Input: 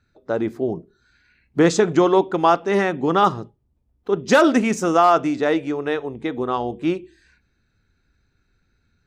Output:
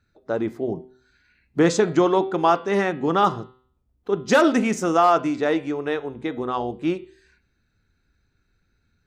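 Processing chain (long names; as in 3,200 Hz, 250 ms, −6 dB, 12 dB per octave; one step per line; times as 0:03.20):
hum removal 127.7 Hz, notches 37
level −2 dB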